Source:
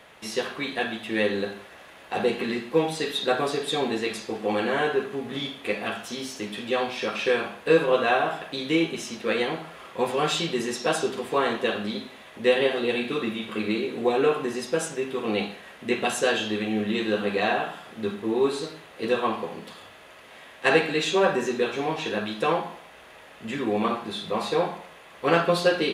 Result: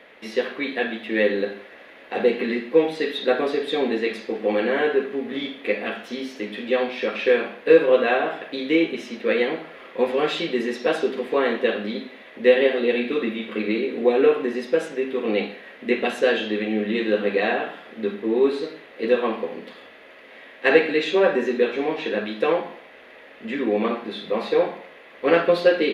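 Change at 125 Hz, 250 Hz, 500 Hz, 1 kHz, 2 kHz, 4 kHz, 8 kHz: -4.0 dB, +3.0 dB, +5.0 dB, -1.5 dB, +2.5 dB, -1.5 dB, under -10 dB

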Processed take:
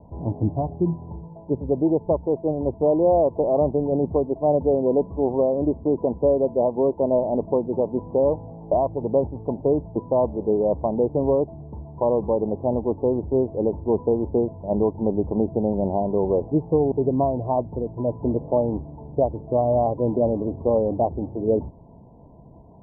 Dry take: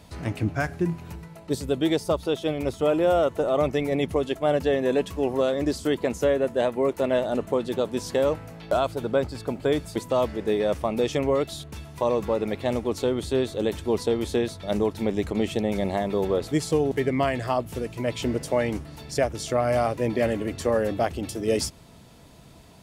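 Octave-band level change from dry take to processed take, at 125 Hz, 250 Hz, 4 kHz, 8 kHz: +3.0 dB, +3.0 dB, under -40 dB, under -40 dB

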